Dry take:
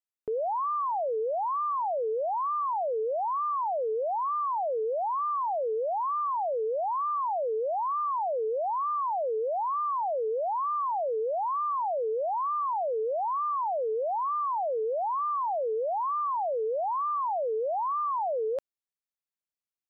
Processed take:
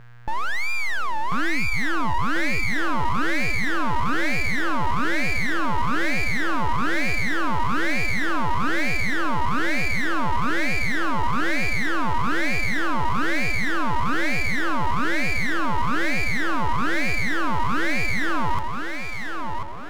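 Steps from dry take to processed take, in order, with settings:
feedback echo with a low-pass in the loop 1,041 ms, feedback 47%, low-pass 1,200 Hz, level −4 dB
hum with harmonics 120 Hz, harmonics 13, −51 dBFS −6 dB per octave
full-wave rectification
level +8.5 dB

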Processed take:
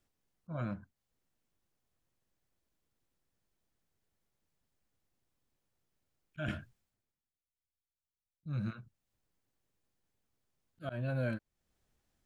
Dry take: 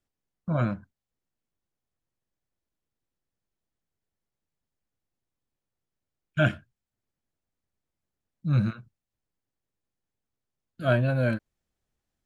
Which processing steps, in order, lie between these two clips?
volume swells 280 ms
downward compressor 2 to 1, threshold −47 dBFS, peak gain reduction 14 dB
0:06.48–0:08.46: multiband upward and downward expander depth 100%
level +4 dB

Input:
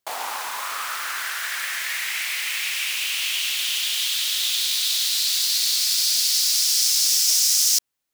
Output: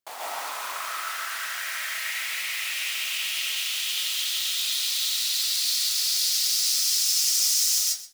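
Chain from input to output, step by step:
0:04.27–0:06.06: high-pass filter 550 Hz → 250 Hz 12 dB per octave
repeating echo 125 ms, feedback 15%, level −16 dB
convolution reverb RT60 0.40 s, pre-delay 100 ms, DRR −4 dB
level −8.5 dB

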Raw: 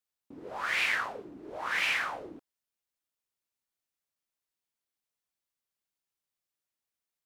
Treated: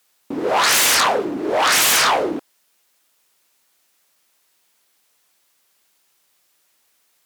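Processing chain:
sine wavefolder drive 18 dB, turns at −16.5 dBFS
high-pass filter 350 Hz 6 dB per octave
level +4.5 dB

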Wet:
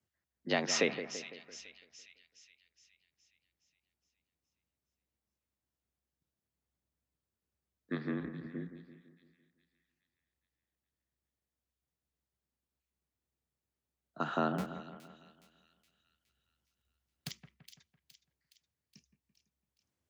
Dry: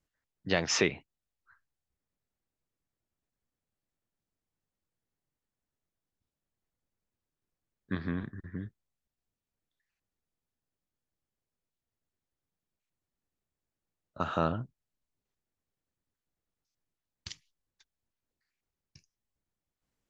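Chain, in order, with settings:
0:14.58–0:17.31: each half-wave held at its own peak
frequency shifter +64 Hz
echo with a time of its own for lows and highs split 2,300 Hz, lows 168 ms, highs 417 ms, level −11 dB
level −3 dB

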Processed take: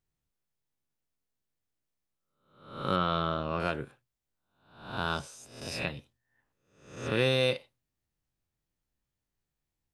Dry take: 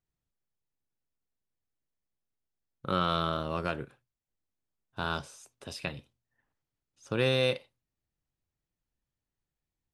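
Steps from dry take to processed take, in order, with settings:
peak hold with a rise ahead of every peak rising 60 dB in 0.61 s
0:02.96–0:03.60: high-frequency loss of the air 160 metres

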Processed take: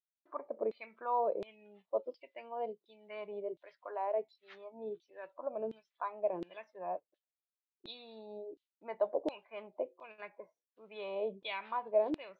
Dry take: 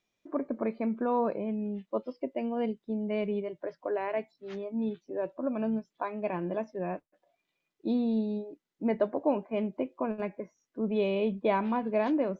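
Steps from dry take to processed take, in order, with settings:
downward expander −54 dBFS
graphic EQ with 15 bands 250 Hz −11 dB, 1,600 Hz −5 dB, 4,000 Hz +8 dB
auto-filter band-pass saw down 1.4 Hz 350–3,600 Hz
level +2 dB

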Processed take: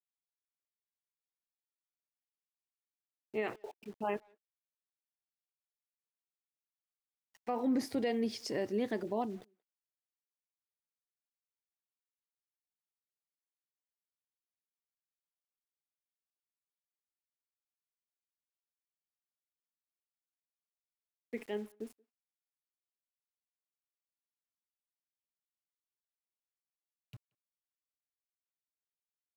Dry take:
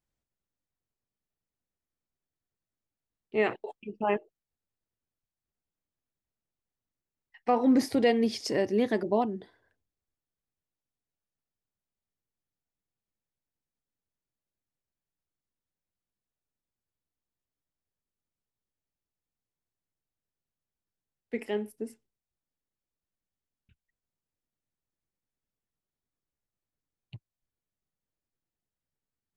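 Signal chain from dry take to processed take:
centre clipping without the shift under −47.5 dBFS
brickwall limiter −17.5 dBFS, peak gain reduction 4.5 dB
far-end echo of a speakerphone 180 ms, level −28 dB
level −7 dB

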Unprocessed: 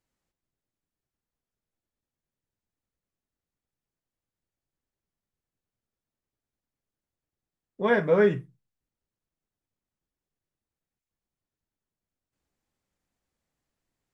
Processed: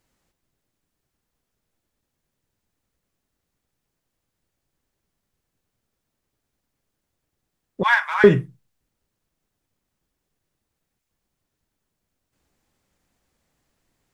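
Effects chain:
in parallel at −7 dB: hard clipping −22.5 dBFS, distortion −8 dB
0:07.83–0:08.24: on the sum: Butterworth high-pass 810 Hz 72 dB per octave
level +8.5 dB

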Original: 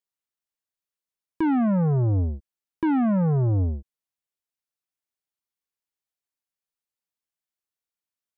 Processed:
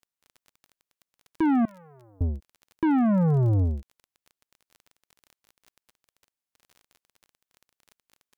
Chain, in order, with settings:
0:01.65–0:02.21: first difference
surface crackle 26 per second −39 dBFS

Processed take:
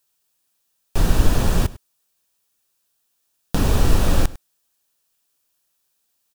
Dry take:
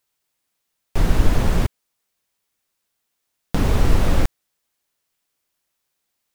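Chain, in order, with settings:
high-shelf EQ 4,600 Hz +7 dB
notch filter 2,100 Hz, Q 6.6
on a send: single-tap delay 101 ms −19.5 dB

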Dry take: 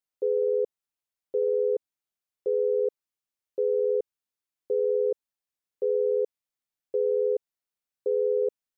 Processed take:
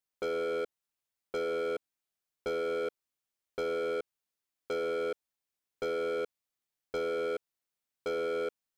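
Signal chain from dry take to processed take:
transient designer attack +7 dB, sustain +1 dB
gain into a clipping stage and back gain 31 dB

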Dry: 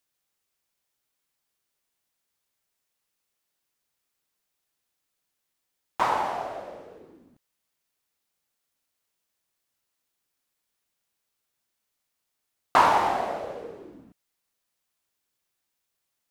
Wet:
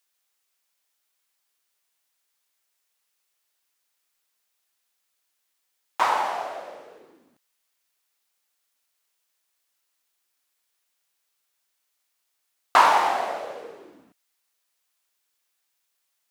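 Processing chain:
high-pass filter 860 Hz 6 dB per octave
level +5 dB

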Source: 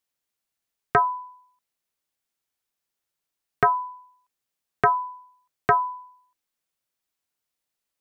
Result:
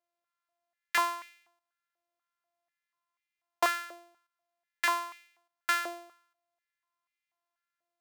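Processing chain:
samples sorted by size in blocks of 128 samples
high-pass on a step sequencer 4.1 Hz 570–2,200 Hz
level −7 dB

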